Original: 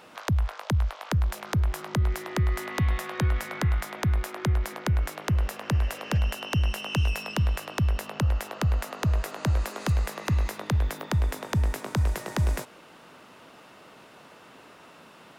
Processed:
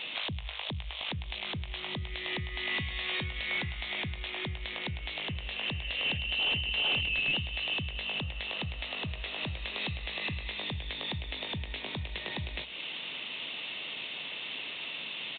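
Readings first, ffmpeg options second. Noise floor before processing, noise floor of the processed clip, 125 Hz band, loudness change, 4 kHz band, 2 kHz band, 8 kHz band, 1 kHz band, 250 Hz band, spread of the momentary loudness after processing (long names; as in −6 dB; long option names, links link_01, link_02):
−51 dBFS, −41 dBFS, −14.0 dB, −5.5 dB, +8.5 dB, +3.0 dB, below −40 dB, −9.0 dB, −10.0 dB, 9 LU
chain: -af "acompressor=threshold=-37dB:ratio=4,aexciter=amount=5.9:drive=9.7:freq=2200,aresample=8000,volume=26.5dB,asoftclip=hard,volume=-26.5dB,aresample=44100,bandreject=frequency=60:width_type=h:width=6,bandreject=frequency=120:width_type=h:width=6,bandreject=frequency=180:width_type=h:width=6"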